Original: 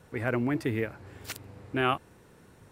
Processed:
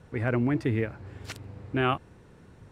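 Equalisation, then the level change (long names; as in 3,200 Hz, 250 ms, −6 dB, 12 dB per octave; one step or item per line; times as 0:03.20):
high-frequency loss of the air 52 metres
low-shelf EQ 190 Hz +7.5 dB
0.0 dB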